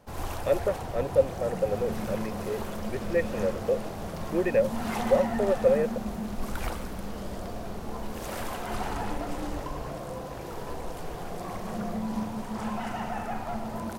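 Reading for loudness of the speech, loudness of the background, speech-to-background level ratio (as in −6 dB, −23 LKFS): −28.5 LKFS, −35.0 LKFS, 6.5 dB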